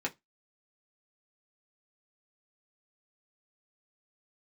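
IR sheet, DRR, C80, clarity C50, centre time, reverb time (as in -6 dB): -2.0 dB, 34.5 dB, 23.5 dB, 8 ms, 0.15 s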